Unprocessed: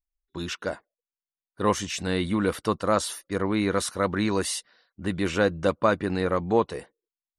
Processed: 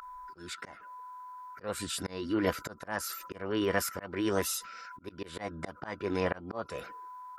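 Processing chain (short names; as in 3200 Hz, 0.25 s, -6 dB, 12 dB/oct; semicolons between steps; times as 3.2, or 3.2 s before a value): whine 1000 Hz -39 dBFS; formant shift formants +5 st; auto swell 0.278 s; gain -4 dB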